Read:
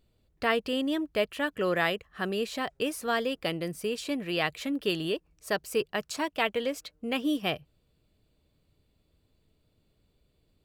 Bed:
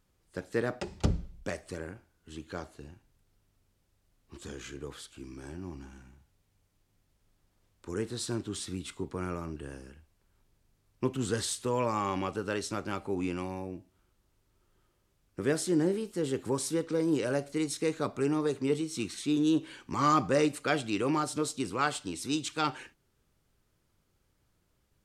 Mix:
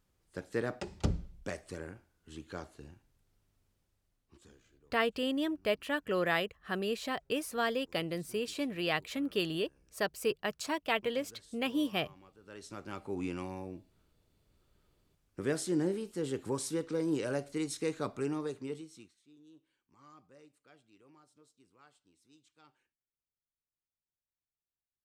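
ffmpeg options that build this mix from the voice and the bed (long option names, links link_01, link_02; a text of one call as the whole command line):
ffmpeg -i stem1.wav -i stem2.wav -filter_complex "[0:a]adelay=4500,volume=-3.5dB[link_01];[1:a]volume=18.5dB,afade=type=out:start_time=3.68:duration=0.95:silence=0.0749894,afade=type=in:start_time=12.4:duration=0.83:silence=0.0794328,afade=type=out:start_time=18.08:duration=1.06:silence=0.0354813[link_02];[link_01][link_02]amix=inputs=2:normalize=0" out.wav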